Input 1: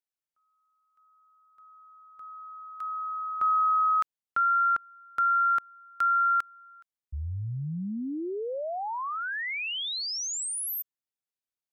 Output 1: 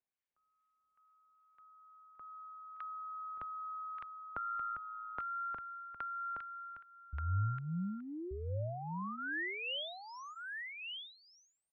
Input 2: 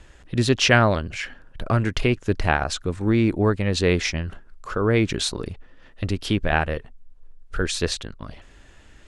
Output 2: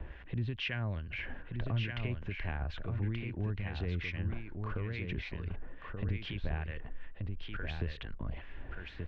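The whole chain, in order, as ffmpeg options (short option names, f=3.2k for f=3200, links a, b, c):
-filter_complex "[0:a]bandreject=f=1.3k:w=9.9,acompressor=threshold=-38dB:ratio=2.5:attack=2.7:release=60:knee=1:detection=rms,acrossover=split=1200[a][b];[a]aeval=exprs='val(0)*(1-0.7/2+0.7/2*cos(2*PI*2.3*n/s))':c=same[c];[b]aeval=exprs='val(0)*(1-0.7/2-0.7/2*cos(2*PI*2.3*n/s))':c=same[d];[c][d]amix=inputs=2:normalize=0,acrossover=split=170|1900[e][f][g];[f]acompressor=threshold=-50dB:ratio=4:release=393:knee=2.83:detection=peak[h];[e][h][g]amix=inputs=3:normalize=0,lowpass=f=2.7k:w=0.5412,lowpass=f=2.7k:w=1.3066,equalizer=f=63:t=o:w=0.8:g=4.5,aecho=1:1:1180:0.562,volume=4.5dB"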